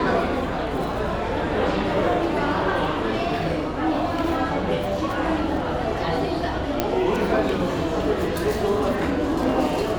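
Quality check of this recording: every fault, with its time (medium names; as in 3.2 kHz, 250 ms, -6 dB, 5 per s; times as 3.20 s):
6.80 s: pop -6 dBFS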